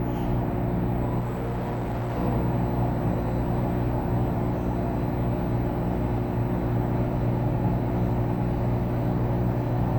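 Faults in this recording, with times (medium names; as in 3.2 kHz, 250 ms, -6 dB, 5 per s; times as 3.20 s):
hum 60 Hz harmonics 6 -29 dBFS
1.19–2.18 s: clipped -25.5 dBFS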